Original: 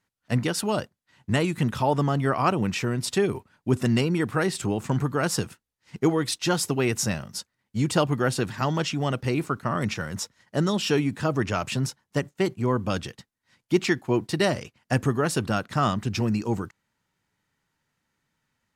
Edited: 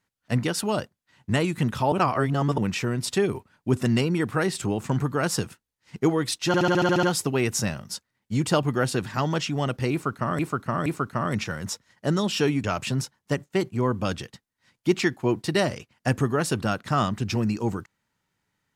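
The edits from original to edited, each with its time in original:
0:01.92–0:02.58: reverse
0:06.47: stutter 0.07 s, 9 plays
0:09.36–0:09.83: repeat, 3 plays
0:11.14–0:11.49: remove

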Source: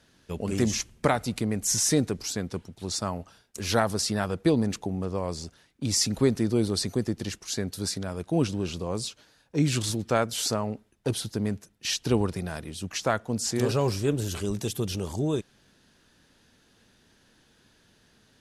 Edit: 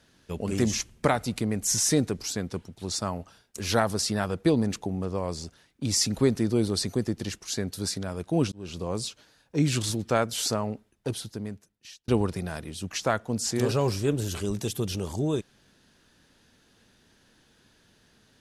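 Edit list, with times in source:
0:08.52–0:08.83: fade in
0:10.67–0:12.08: fade out

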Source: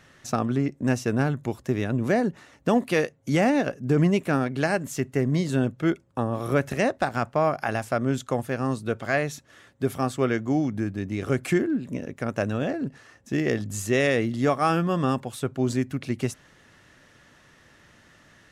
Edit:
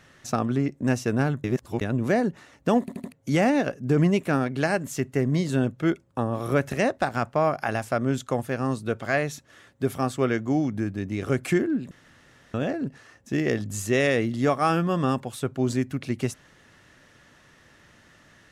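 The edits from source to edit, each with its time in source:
0:01.44–0:01.81: reverse
0:02.80: stutter in place 0.08 s, 4 plays
0:11.91–0:12.54: fill with room tone

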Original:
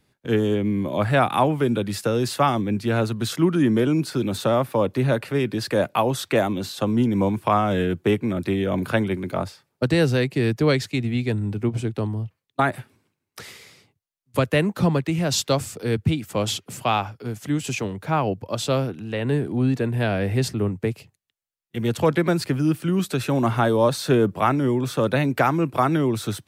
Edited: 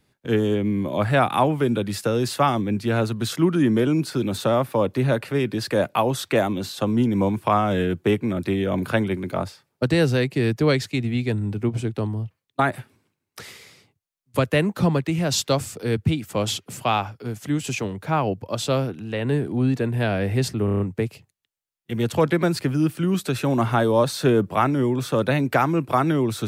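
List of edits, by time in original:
0:20.65: stutter 0.03 s, 6 plays

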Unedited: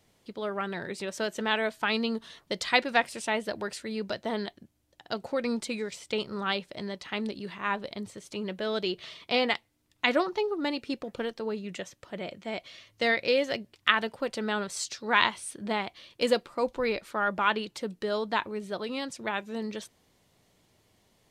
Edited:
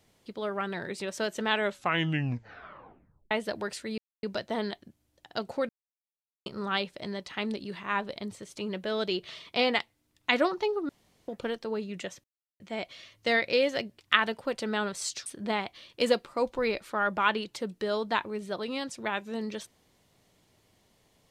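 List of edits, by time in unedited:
0:01.55: tape stop 1.76 s
0:03.98: splice in silence 0.25 s
0:05.44–0:06.21: silence
0:10.64–0:11.03: fill with room tone
0:11.99–0:12.35: silence
0:15.01–0:15.47: remove

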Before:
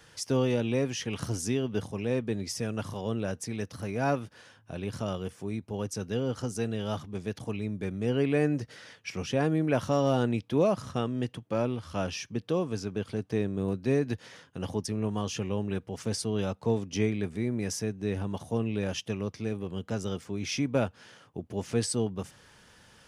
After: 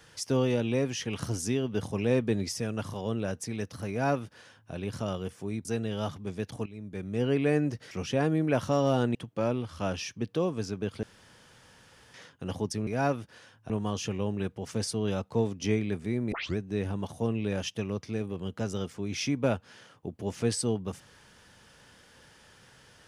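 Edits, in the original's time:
0:01.83–0:02.49: clip gain +3.5 dB
0:03.90–0:04.73: duplicate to 0:15.01
0:05.65–0:06.53: remove
0:07.54–0:08.10: fade in, from −15.5 dB
0:08.79–0:09.11: remove
0:10.35–0:11.29: remove
0:13.17–0:14.28: fill with room tone
0:17.63: tape start 0.25 s

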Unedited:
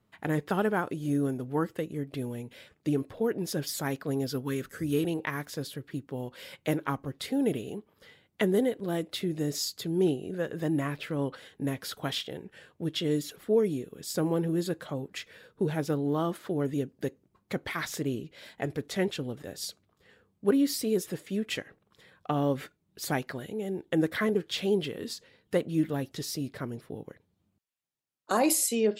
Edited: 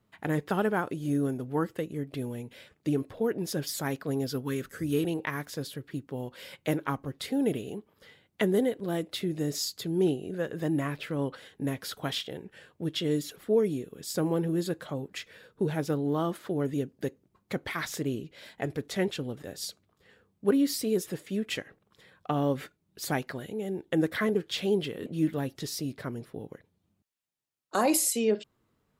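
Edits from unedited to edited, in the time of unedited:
0:25.06–0:25.62: remove

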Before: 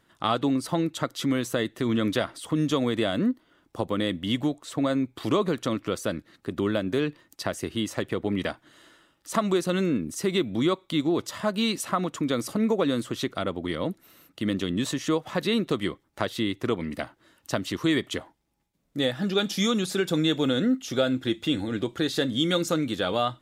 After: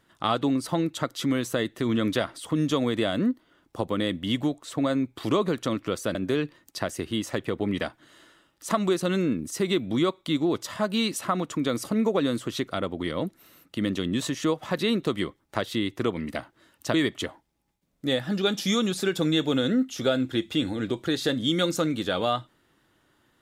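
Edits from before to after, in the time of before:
0:06.15–0:06.79: remove
0:17.58–0:17.86: remove

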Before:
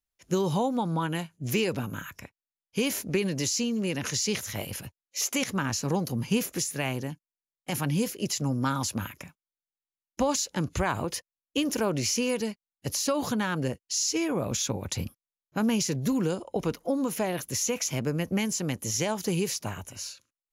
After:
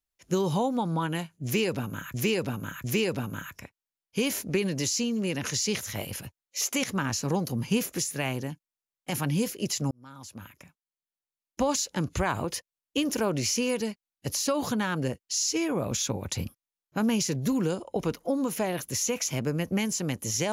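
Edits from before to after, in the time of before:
0:01.44–0:02.14: repeat, 3 plays
0:08.51–0:10.30: fade in

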